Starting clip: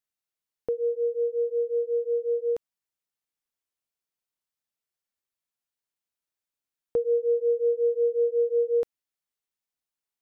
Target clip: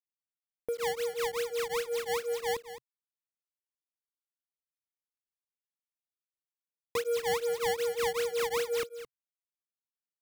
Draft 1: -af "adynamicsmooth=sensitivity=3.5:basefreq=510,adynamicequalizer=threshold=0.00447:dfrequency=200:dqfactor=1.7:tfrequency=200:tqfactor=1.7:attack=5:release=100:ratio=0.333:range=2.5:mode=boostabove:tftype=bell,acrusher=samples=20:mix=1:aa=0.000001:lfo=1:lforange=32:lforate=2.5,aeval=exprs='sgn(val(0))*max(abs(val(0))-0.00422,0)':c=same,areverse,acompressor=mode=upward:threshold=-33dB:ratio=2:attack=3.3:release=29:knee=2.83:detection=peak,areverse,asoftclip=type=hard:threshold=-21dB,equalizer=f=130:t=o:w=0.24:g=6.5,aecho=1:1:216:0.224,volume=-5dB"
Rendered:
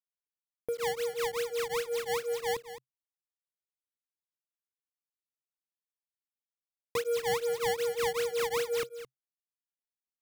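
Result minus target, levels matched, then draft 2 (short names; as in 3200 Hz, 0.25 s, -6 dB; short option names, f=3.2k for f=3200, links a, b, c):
125 Hz band +3.0 dB
-af "adynamicsmooth=sensitivity=3.5:basefreq=510,adynamicequalizer=threshold=0.00447:dfrequency=200:dqfactor=1.7:tfrequency=200:tqfactor=1.7:attack=5:release=100:ratio=0.333:range=2.5:mode=boostabove:tftype=bell,acrusher=samples=20:mix=1:aa=0.000001:lfo=1:lforange=32:lforate=2.5,aeval=exprs='sgn(val(0))*max(abs(val(0))-0.00422,0)':c=same,areverse,acompressor=mode=upward:threshold=-33dB:ratio=2:attack=3.3:release=29:knee=2.83:detection=peak,areverse,asoftclip=type=hard:threshold=-21dB,equalizer=f=130:t=o:w=0.24:g=-2,aecho=1:1:216:0.224,volume=-5dB"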